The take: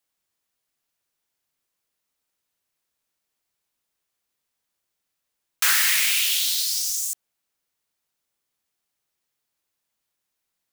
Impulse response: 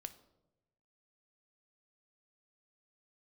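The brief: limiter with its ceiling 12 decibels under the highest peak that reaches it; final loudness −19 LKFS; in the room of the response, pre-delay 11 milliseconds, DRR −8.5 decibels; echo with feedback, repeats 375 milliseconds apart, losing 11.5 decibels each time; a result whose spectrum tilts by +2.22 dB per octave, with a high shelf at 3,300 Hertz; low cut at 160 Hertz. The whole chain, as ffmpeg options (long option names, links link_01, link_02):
-filter_complex "[0:a]highpass=160,highshelf=frequency=3300:gain=-8.5,alimiter=limit=-23.5dB:level=0:latency=1,aecho=1:1:375|750|1125:0.266|0.0718|0.0194,asplit=2[link_01][link_02];[1:a]atrim=start_sample=2205,adelay=11[link_03];[link_02][link_03]afir=irnorm=-1:irlink=0,volume=13dB[link_04];[link_01][link_04]amix=inputs=2:normalize=0,volume=3dB"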